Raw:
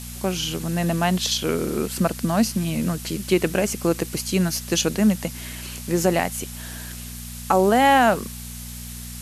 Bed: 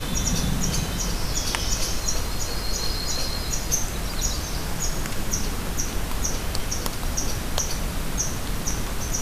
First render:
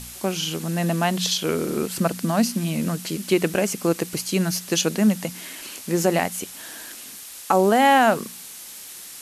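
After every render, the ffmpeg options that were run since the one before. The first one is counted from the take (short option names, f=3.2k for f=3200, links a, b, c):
-af "bandreject=f=60:t=h:w=4,bandreject=f=120:t=h:w=4,bandreject=f=180:t=h:w=4,bandreject=f=240:t=h:w=4"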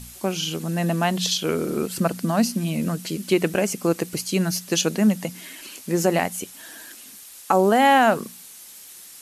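-af "afftdn=nr=6:nf=-40"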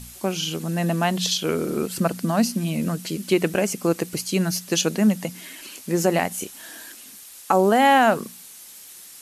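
-filter_complex "[0:a]asettb=1/sr,asplit=3[a][b][c];[a]atrim=end=6.284[d];[b]atrim=start=6.28:end=6.91,asetpts=PTS-STARTPTS,afade=t=in:d=0.004:c=qsin,afade=t=out:st=0.626:d=0.004:c=qsin,asplit=2[e][f];[f]adelay=30,volume=-5.5dB[g];[e][g]amix=inputs=2:normalize=0,atrim=end_sample=27783[h];[c]atrim=start=6.906[i];[d][h]acrossfade=d=0.004:c1=hsin:c2=qsin[j];[j][i]acrossfade=d=0.004:c1=qsin:c2=hsin"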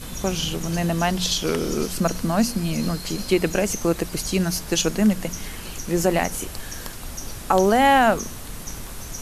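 -filter_complex "[1:a]volume=-8dB[a];[0:a][a]amix=inputs=2:normalize=0"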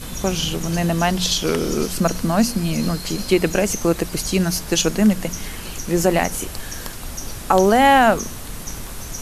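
-af "volume=3dB"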